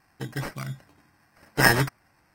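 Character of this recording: aliases and images of a low sample rate 3.5 kHz, jitter 0%; AAC

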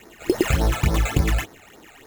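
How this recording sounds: aliases and images of a low sample rate 4.7 kHz, jitter 0%; phasing stages 12, 3.5 Hz, lowest notch 300–2900 Hz

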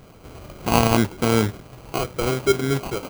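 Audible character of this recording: aliases and images of a low sample rate 1.8 kHz, jitter 0%

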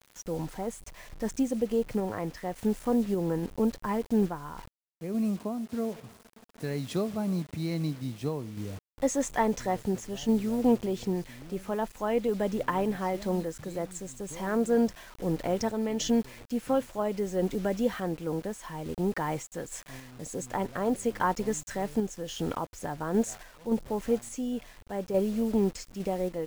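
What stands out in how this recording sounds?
a quantiser's noise floor 8-bit, dither none; random-step tremolo

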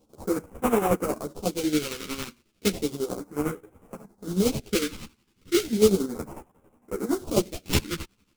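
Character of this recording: aliases and images of a low sample rate 1.8 kHz, jitter 20%; phasing stages 2, 0.34 Hz, lowest notch 640–4100 Hz; chopped level 11 Hz, depth 60%, duty 50%; a shimmering, thickened sound

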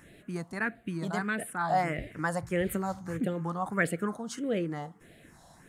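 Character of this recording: phasing stages 4, 1.6 Hz, lowest notch 390–1000 Hz

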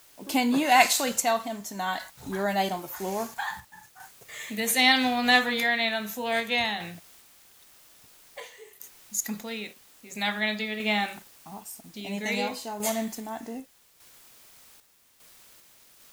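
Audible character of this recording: a quantiser's noise floor 10-bit, dither triangular; random-step tremolo 2.5 Hz, depth 65%

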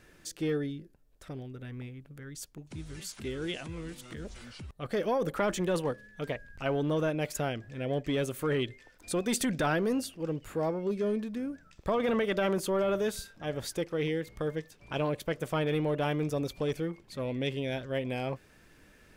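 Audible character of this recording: noise floor -60 dBFS; spectral tilt -5.5 dB/octave

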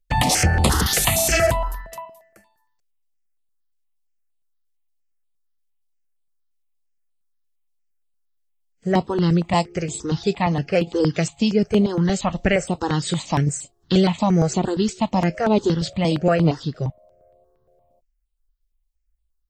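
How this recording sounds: notches that jump at a steady rate 8.6 Hz 260–5800 Hz

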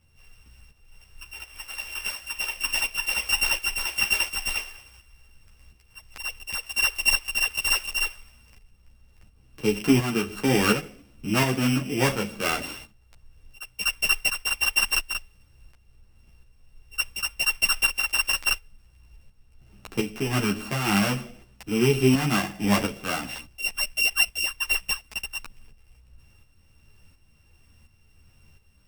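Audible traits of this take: a buzz of ramps at a fixed pitch in blocks of 16 samples; tremolo saw up 1.4 Hz, depth 60%; a shimmering, thickened sound

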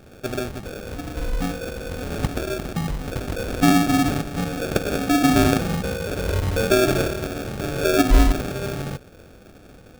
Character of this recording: phasing stages 6, 0.71 Hz, lowest notch 790–1800 Hz; aliases and images of a low sample rate 1 kHz, jitter 0%

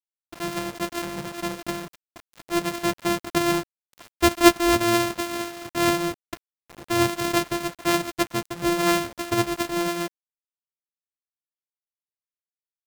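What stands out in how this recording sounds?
a buzz of ramps at a fixed pitch in blocks of 128 samples; tremolo triangle 4.3 Hz, depth 55%; a quantiser's noise floor 8-bit, dither none

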